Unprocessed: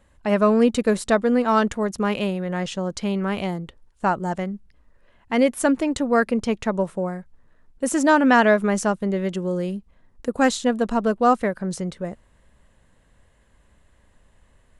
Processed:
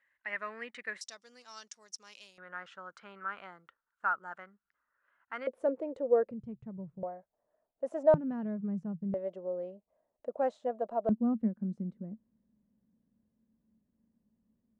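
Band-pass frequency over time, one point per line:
band-pass, Q 7
1900 Hz
from 1.01 s 5600 Hz
from 2.38 s 1400 Hz
from 5.47 s 510 Hz
from 6.31 s 130 Hz
from 7.03 s 640 Hz
from 8.14 s 160 Hz
from 9.14 s 620 Hz
from 11.09 s 220 Hz

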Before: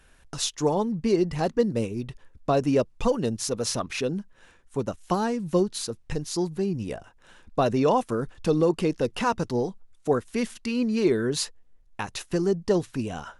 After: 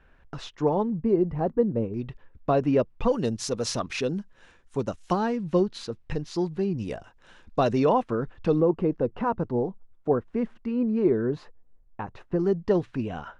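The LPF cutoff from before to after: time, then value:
2000 Hz
from 0.9 s 1000 Hz
from 1.94 s 2600 Hz
from 3.11 s 6700 Hz
from 5.13 s 3500 Hz
from 6.78 s 6100 Hz
from 7.85 s 2600 Hz
from 8.6 s 1100 Hz
from 12.39 s 2600 Hz

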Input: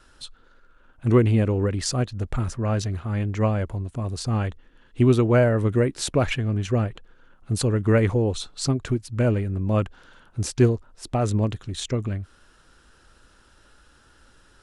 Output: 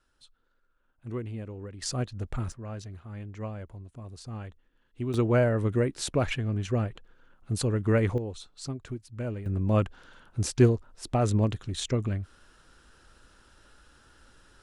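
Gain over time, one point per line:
-17.5 dB
from 1.82 s -6.5 dB
from 2.52 s -14.5 dB
from 5.14 s -5 dB
from 8.18 s -12.5 dB
from 9.46 s -2 dB

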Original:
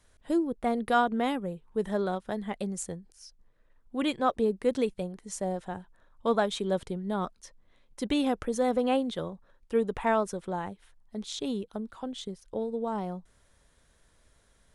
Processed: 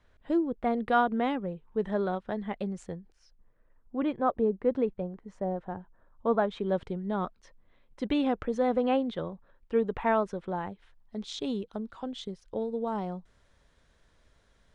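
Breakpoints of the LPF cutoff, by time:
2.98 s 3000 Hz
4.01 s 1400 Hz
6.29 s 1400 Hz
6.84 s 3000 Hz
10.54 s 3000 Hz
11.28 s 5300 Hz

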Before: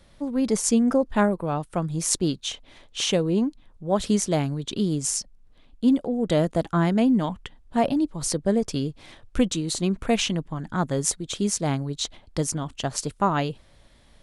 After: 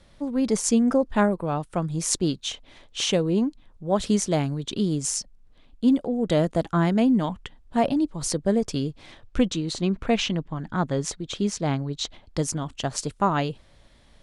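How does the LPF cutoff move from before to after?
8.8 s 10000 Hz
9.66 s 5100 Hz
11.84 s 5100 Hz
12.5 s 9600 Hz

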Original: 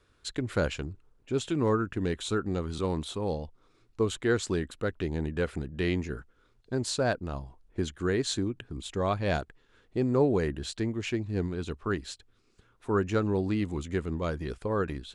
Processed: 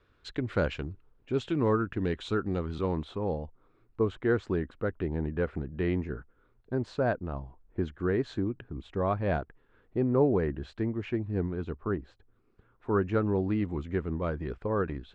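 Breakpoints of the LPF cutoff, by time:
2.55 s 3200 Hz
3.41 s 1700 Hz
11.65 s 1700 Hz
12 s 1000 Hz
12.98 s 2000 Hz

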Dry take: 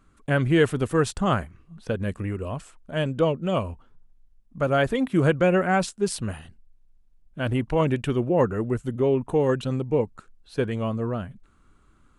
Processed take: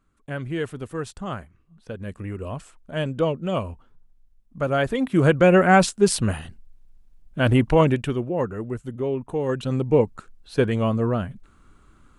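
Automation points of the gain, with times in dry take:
1.83 s -8.5 dB
2.47 s -0.5 dB
4.88 s -0.5 dB
5.73 s +7 dB
7.7 s +7 dB
8.31 s -4 dB
9.41 s -4 dB
9.87 s +5 dB

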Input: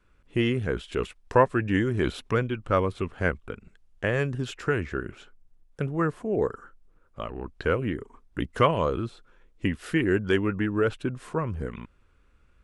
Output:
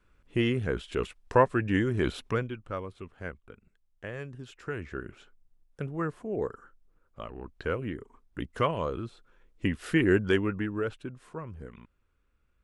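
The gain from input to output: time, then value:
2.25 s -2 dB
2.8 s -13 dB
4.49 s -13 dB
4.99 s -6 dB
9.04 s -6 dB
10.11 s +1 dB
11.18 s -11 dB

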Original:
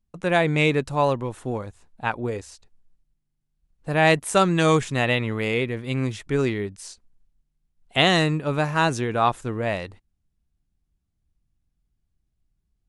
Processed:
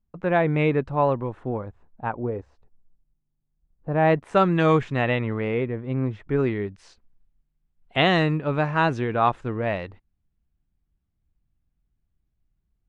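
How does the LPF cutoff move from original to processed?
1.35 s 1700 Hz
2.25 s 1000 Hz
3.91 s 1000 Hz
4.41 s 2300 Hz
5.01 s 2300 Hz
5.97 s 1100 Hz
6.77 s 2700 Hz

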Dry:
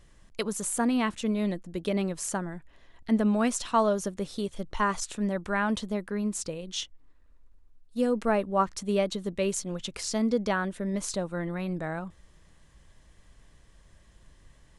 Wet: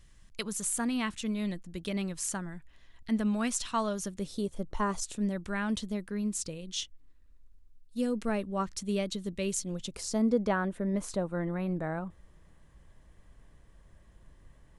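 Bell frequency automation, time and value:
bell -9.5 dB 2.5 oct
4.05 s 540 Hz
4.62 s 3600 Hz
5.37 s 830 Hz
9.55 s 830 Hz
10.46 s 5200 Hz

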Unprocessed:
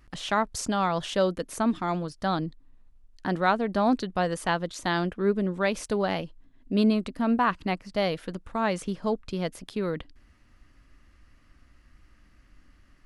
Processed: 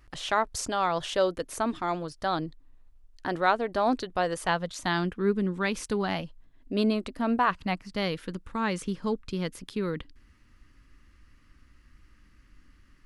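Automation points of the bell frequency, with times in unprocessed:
bell -12 dB 0.46 oct
4.36 s 200 Hz
5.07 s 630 Hz
5.97 s 630 Hz
6.72 s 170 Hz
7.35 s 170 Hz
7.92 s 670 Hz

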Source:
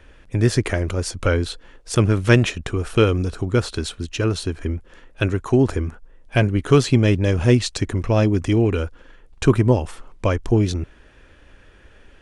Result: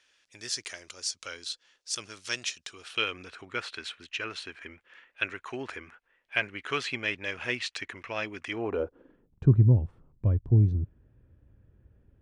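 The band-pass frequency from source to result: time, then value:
band-pass, Q 1.7
2.63 s 5400 Hz
3.17 s 2200 Hz
8.48 s 2200 Hz
8.83 s 490 Hz
9.54 s 110 Hz

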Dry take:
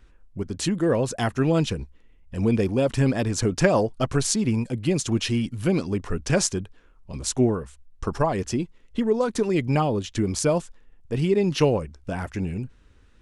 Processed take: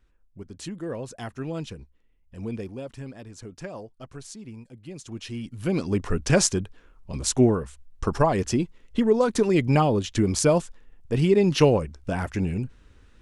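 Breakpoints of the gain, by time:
2.56 s -11 dB
3.09 s -18 dB
4.84 s -18 dB
5.39 s -9.5 dB
5.96 s +2 dB

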